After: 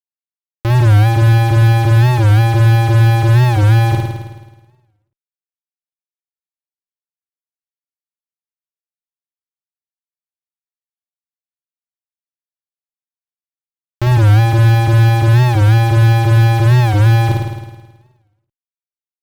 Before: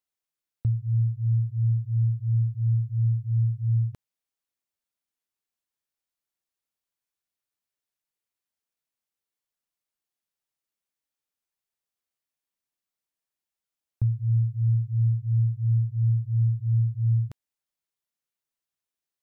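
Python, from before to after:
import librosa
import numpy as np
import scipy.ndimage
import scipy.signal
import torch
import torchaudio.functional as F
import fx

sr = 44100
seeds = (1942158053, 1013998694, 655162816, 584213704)

y = fx.fuzz(x, sr, gain_db=50.0, gate_db=-57.0)
y = fx.room_flutter(y, sr, wall_m=9.2, rt60_s=1.2)
y = fx.record_warp(y, sr, rpm=45.0, depth_cents=160.0)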